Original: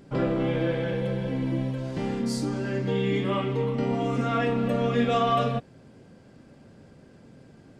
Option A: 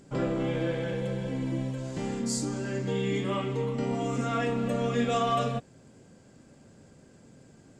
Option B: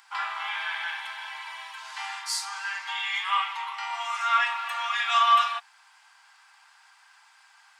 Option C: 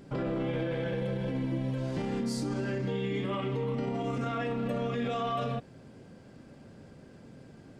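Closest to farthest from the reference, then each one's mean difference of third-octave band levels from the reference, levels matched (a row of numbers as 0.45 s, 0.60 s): A, C, B; 1.5 dB, 2.5 dB, 18.5 dB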